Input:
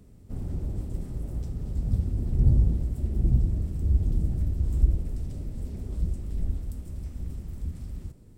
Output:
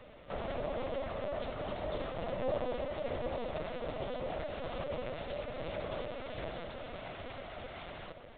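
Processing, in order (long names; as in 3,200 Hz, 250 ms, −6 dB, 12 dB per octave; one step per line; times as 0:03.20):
Butterworth high-pass 460 Hz 96 dB per octave
delay that swaps between a low-pass and a high-pass 363 ms, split 820 Hz, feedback 54%, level −9 dB
linear-prediction vocoder at 8 kHz pitch kept
level +18 dB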